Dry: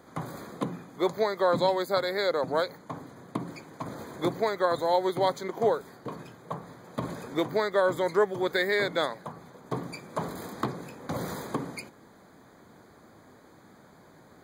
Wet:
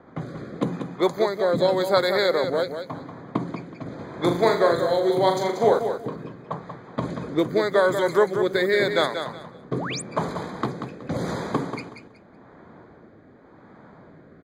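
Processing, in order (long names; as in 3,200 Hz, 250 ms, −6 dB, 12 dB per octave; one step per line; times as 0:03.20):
low-pass that shuts in the quiet parts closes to 1,900 Hz, open at −25 dBFS
0:04.09–0:05.79: flutter between parallel walls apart 6.9 metres, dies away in 0.41 s
rotating-speaker cabinet horn 0.85 Hz
on a send: repeating echo 186 ms, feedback 23%, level −8 dB
0:09.74–0:10.02: on the sum: sound drawn into the spectrogram rise 260–10,000 Hz −39 dBFS
level +7 dB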